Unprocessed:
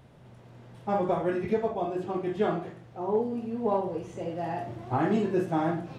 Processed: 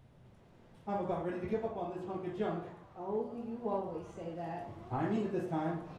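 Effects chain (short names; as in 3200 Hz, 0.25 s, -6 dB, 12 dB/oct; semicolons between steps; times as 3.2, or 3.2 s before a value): low shelf 86 Hz +11 dB; de-hum 60.2 Hz, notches 30; frequency-shifting echo 0.109 s, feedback 64%, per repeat +140 Hz, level -20 dB; gain -8.5 dB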